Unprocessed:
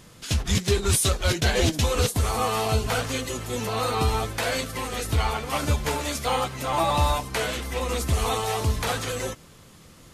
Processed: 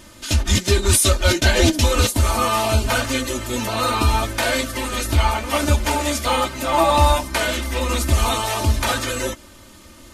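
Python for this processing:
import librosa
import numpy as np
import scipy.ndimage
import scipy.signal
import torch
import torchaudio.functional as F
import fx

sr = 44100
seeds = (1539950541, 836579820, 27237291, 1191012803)

y = x + 0.87 * np.pad(x, (int(3.3 * sr / 1000.0), 0))[:len(x)]
y = y * 10.0 ** (4.0 / 20.0)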